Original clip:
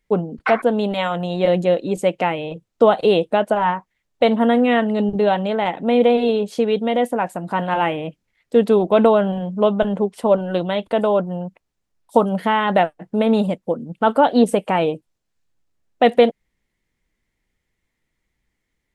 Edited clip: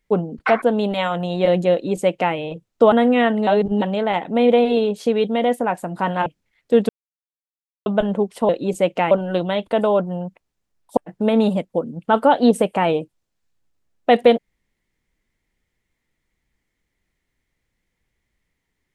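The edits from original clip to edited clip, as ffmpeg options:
-filter_complex "[0:a]asplit=10[s0][s1][s2][s3][s4][s5][s6][s7][s8][s9];[s0]atrim=end=2.922[s10];[s1]atrim=start=4.438:end=4.992[s11];[s2]atrim=start=4.988:end=5.342,asetpts=PTS-STARTPTS,areverse[s12];[s3]atrim=start=5.338:end=7.782[s13];[s4]atrim=start=8.078:end=8.71,asetpts=PTS-STARTPTS,afade=t=out:st=0.628:d=0.004:c=hsin[s14];[s5]atrim=start=8.71:end=9.68,asetpts=PTS-STARTPTS,volume=0[s15];[s6]atrim=start=9.68:end=10.312,asetpts=PTS-STARTPTS,afade=t=in:d=0.004:c=hsin[s16];[s7]atrim=start=1.718:end=2.342[s17];[s8]atrim=start=10.308:end=12.172[s18];[s9]atrim=start=12.898[s19];[s10][s11]acrossfade=d=0.004:c1=hsin:c2=hsin[s20];[s20][s12]acrossfade=d=0.004:c1=hsin:c2=hsin[s21];[s21][s13]acrossfade=d=0.004:c1=hsin:c2=hsin[s22];[s14][s15][s16]concat=n=3:v=0:a=1[s23];[s22][s23]acrossfade=d=0.004:c1=hsin:c2=hsin[s24];[s24][s17]acrossfade=d=0.004:c1=hsin:c2=hsin[s25];[s25][s18]acrossfade=d=0.004:c1=hsin:c2=hsin[s26];[s26][s19]acrossfade=d=0.004:c1=hsin:c2=hsin"

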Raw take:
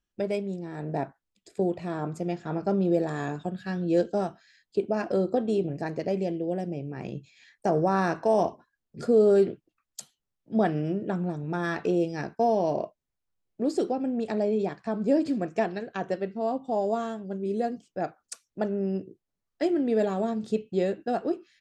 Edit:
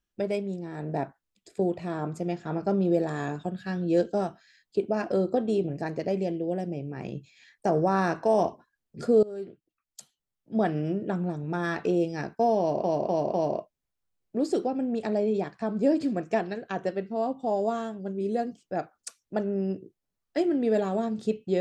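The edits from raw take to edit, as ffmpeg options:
-filter_complex "[0:a]asplit=5[s0][s1][s2][s3][s4];[s0]atrim=end=9.23,asetpts=PTS-STARTPTS,afade=t=out:st=9.226:d=0.004:c=hsin:silence=0.0794328[s5];[s1]atrim=start=9.23:end=12.842,asetpts=PTS-STARTPTS,afade=t=in:d=1.66:silence=0.0794328[s6];[s2]atrim=start=12.588:end=12.842[s7];[s3]atrim=start=12.588:end=12.842[s8];[s4]atrim=start=12.588[s9];[s5][s6]concat=n=2:v=0:a=1[s10];[s10][s7]acrossfade=d=0.004:c1=hsin:c2=hsin[s11];[s11][s8]acrossfade=d=0.004:c1=hsin:c2=hsin[s12];[s12][s9]acrossfade=d=0.004:c1=hsin:c2=hsin"

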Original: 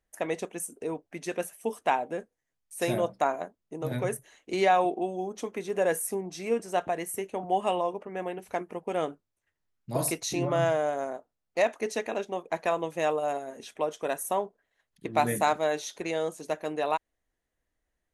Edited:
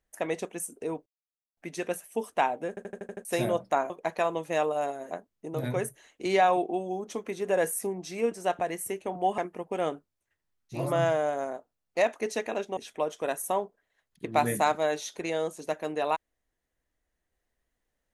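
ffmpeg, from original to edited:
-filter_complex "[0:a]asplit=14[s0][s1][s2][s3][s4][s5][s6][s7][s8][s9][s10][s11][s12][s13];[s0]atrim=end=1.06,asetpts=PTS-STARTPTS,afade=t=out:st=1.056:d=0.004:c=hsin,apad=pad_dur=0.51[s14];[s1]atrim=start=1.06:end=2.262,asetpts=PTS-STARTPTS,afade=t=in:d=0.004:c=hsin[s15];[s2]atrim=start=2.178:end=2.262[s16];[s3]atrim=start=2.178:end=2.262[s17];[s4]atrim=start=2.178:end=2.262[s18];[s5]atrim=start=2.178:end=2.262[s19];[s6]atrim=start=2.178:end=2.262[s20];[s7]atrim=start=2.178:end=2.262[s21];[s8]atrim=start=2.738:end=3.392[s22];[s9]atrim=start=12.368:end=13.582[s23];[s10]atrim=start=3.388:end=7.662[s24];[s11]atrim=start=8.538:end=10.09[s25];[s12]atrim=start=10.29:end=12.372[s26];[s13]atrim=start=13.578[s27];[s14][s15]concat=n=2:v=0:a=1[s28];[s28][s16]acrossfade=d=0.004:c1=hsin:c2=hsin[s29];[s29][s17]acrossfade=d=0.004:c1=hsin:c2=hsin[s30];[s30][s18]acrossfade=d=0.004:c1=hsin:c2=hsin[s31];[s31][s19]acrossfade=d=0.004:c1=hsin:c2=hsin[s32];[s32][s20]acrossfade=d=0.004:c1=hsin:c2=hsin[s33];[s33][s21]acrossfade=d=0.004:c1=hsin:c2=hsin[s34];[s34][s22]acrossfade=d=0.004:c1=hsin:c2=hsin[s35];[s35][s23]acrossfade=d=0.004:c1=hsin:c2=hsin[s36];[s36][s24]acrossfade=d=0.004:c1=hsin:c2=hsin[s37];[s37][s25]acrossfade=d=0.004:c1=hsin:c2=hsin[s38];[s38][s26]acrossfade=d=0.24:c1=tri:c2=tri[s39];[s39][s27]acrossfade=d=0.004:c1=hsin:c2=hsin"

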